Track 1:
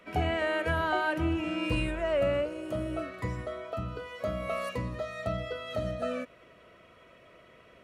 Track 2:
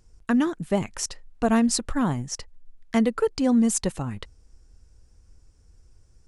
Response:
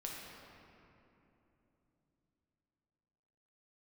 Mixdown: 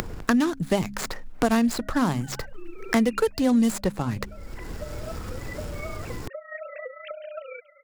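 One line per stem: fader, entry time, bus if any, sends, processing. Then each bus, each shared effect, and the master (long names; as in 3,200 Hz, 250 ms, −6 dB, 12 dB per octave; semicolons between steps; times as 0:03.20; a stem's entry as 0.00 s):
−15.0 dB, 1.35 s, no send, three sine waves on the formant tracks; amplitude modulation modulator 29 Hz, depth 40%; downward compressor, threshold −37 dBFS, peak gain reduction 17 dB
+1.5 dB, 0.00 s, no send, running median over 15 samples; upward compression, threshold −26 dBFS; hum removal 67.64 Hz, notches 4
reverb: not used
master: high-shelf EQ 2,100 Hz +9.5 dB; multiband upward and downward compressor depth 70%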